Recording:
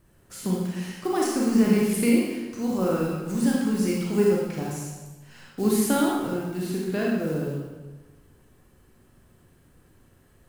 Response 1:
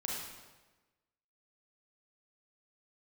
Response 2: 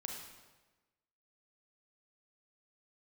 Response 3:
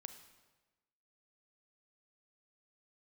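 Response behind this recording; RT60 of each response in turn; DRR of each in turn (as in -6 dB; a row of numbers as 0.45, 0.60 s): 1; 1.2, 1.2, 1.2 s; -3.5, 0.5, 8.0 dB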